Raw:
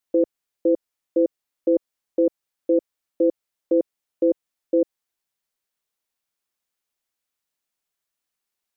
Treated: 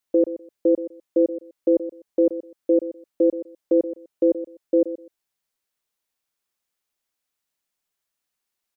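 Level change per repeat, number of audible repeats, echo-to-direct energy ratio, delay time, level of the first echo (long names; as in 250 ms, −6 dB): −15.0 dB, 2, −13.0 dB, 125 ms, −13.0 dB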